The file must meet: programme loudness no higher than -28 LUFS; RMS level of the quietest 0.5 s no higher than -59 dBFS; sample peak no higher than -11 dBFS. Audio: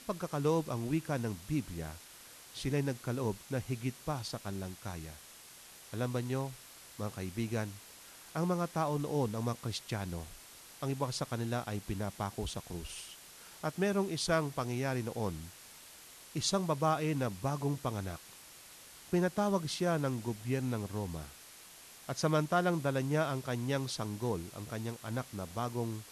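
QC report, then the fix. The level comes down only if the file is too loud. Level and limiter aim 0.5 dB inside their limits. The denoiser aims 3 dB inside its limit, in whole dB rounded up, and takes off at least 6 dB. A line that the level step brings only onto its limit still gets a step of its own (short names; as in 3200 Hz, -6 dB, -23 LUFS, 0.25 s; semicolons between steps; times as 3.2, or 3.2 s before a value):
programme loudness -35.5 LUFS: OK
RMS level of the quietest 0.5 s -54 dBFS: fail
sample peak -17.0 dBFS: OK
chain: denoiser 8 dB, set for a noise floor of -54 dBFS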